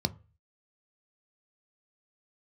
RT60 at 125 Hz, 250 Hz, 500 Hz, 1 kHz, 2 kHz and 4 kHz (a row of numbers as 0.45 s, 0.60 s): 0.50 s, 0.30 s, 0.35 s, 0.35 s, 0.35 s, 0.25 s